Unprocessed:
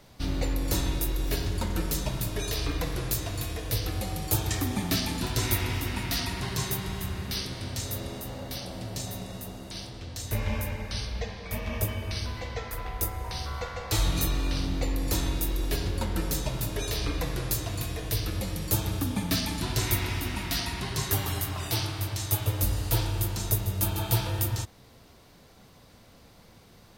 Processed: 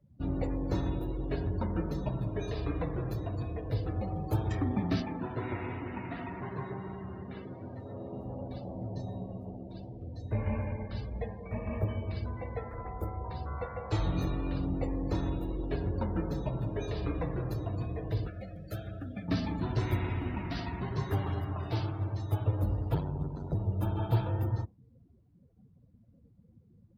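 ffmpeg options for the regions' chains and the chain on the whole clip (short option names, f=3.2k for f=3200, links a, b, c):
-filter_complex "[0:a]asettb=1/sr,asplit=3[a][b][c];[a]atrim=end=5.024[d];[b]atrim=start=5.02:end=8.13,asetpts=PTS-STARTPTS,afade=t=in:d=0.004:c=qsin,afade=t=out:st=3.106:d=0.004:c=qsin,highpass=f=250:p=1,acrossover=split=3100[e][f];[f]acompressor=threshold=-46dB:ratio=4:attack=1:release=60[g];[e][g]amix=inputs=2:normalize=0[h];[c]atrim=start=8.126[i];[d][h]acrossfade=d=0.004:c1=hsin:c2=qsin[j];[j][i]acrossfade=d=0.004:c1=qsin:c2=hsin,asettb=1/sr,asplit=3[k][l][m];[k]atrim=end=18.274[n];[l]atrim=start=18.27:end=19.28,asetpts=PTS-STARTPTS,afade=t=in:d=0.004:c=qsin,afade=t=out:st=1.006:d=0.004:c=qsin,asuperstop=centerf=970:order=8:qfactor=1.8,lowshelf=f=560:t=q:w=1.5:g=-9[o];[m]atrim=start=19.276[p];[n][o]acrossfade=d=0.004:c1=hsin:c2=qsin[q];[q][p]acrossfade=d=0.004:c1=qsin:c2=hsin,asettb=1/sr,asplit=3[r][s][t];[r]atrim=end=22.944[u];[s]atrim=start=22.94:end=23.55,asetpts=PTS-STARTPTS,afade=t=in:d=0.004:c=qsin,afade=t=out:st=0.606:d=0.004:c=qsin,lowpass=9.9k,aeval=exprs='val(0)*sin(2*PI*47*n/s)':c=same[v];[t]atrim=start=23.546[w];[u][v]acrossfade=d=0.004:c1=hsin:c2=qsin[x];[x][w]acrossfade=d=0.004:c1=qsin:c2=hsin,lowpass=f=1k:p=1,afftdn=nr=28:nf=-46,highpass=69"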